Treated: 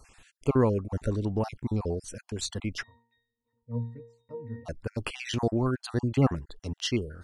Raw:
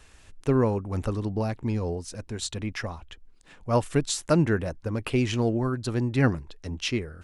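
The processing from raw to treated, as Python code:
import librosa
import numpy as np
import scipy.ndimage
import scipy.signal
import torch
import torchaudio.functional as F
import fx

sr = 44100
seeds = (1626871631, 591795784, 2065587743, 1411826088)

y = fx.spec_dropout(x, sr, seeds[0], share_pct=38)
y = fx.octave_resonator(y, sr, note='A#', decay_s=0.48, at=(2.82, 4.65), fade=0.02)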